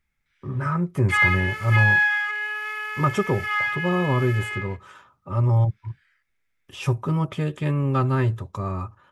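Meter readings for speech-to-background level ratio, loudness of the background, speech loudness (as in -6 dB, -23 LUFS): -1.0 dB, -23.5 LUFS, -24.5 LUFS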